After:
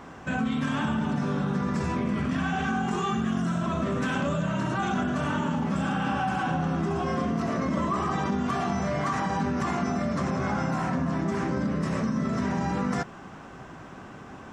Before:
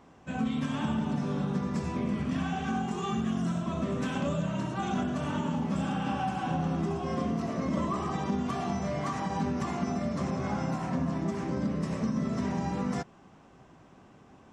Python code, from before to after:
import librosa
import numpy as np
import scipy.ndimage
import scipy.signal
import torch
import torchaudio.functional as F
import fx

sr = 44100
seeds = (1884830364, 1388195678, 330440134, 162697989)

p1 = fx.peak_eq(x, sr, hz=1500.0, db=6.5, octaves=0.8)
p2 = fx.over_compress(p1, sr, threshold_db=-38.0, ratio=-1.0)
y = p1 + (p2 * 10.0 ** (0.5 / 20.0))